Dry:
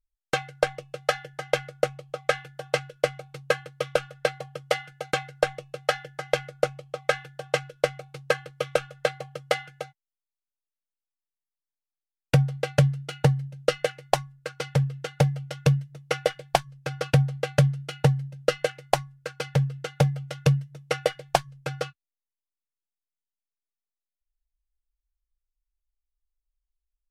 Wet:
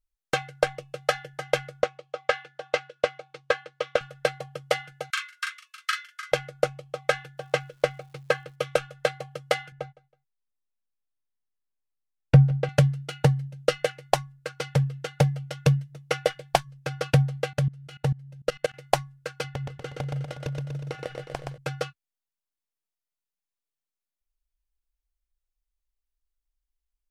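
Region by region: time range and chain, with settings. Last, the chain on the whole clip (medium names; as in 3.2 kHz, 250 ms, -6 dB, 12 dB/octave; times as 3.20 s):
1.82–4.01 s: band-pass 310–5500 Hz + loudspeaker Doppler distortion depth 0.12 ms
5.10–6.32 s: steep high-pass 1.1 kHz 96 dB/octave + doubling 40 ms -4.5 dB
7.37–8.54 s: treble shelf 5.6 kHz -6.5 dB + crackle 430 per s -55 dBFS
9.72–12.69 s: low-pass 1.8 kHz 6 dB/octave + bass shelf 150 Hz +10 dB + feedback delay 161 ms, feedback 31%, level -22.5 dB
17.53–18.74 s: bass shelf 63 Hz +8.5 dB + level held to a coarse grid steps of 22 dB
19.44–21.58 s: tilt EQ -1.5 dB/octave + compression 12:1, threshold -28 dBFS + feedback delay 121 ms, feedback 58%, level -4 dB
whole clip: none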